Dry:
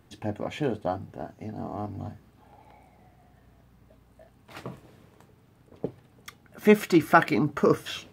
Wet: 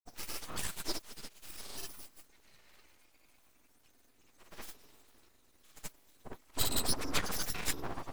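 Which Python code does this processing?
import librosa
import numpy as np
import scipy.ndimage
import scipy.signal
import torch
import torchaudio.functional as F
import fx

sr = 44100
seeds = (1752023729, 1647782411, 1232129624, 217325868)

y = fx.octave_mirror(x, sr, pivot_hz=1300.0)
y = fx.granulator(y, sr, seeds[0], grain_ms=100.0, per_s=20.0, spray_ms=100.0, spread_st=0)
y = np.abs(y)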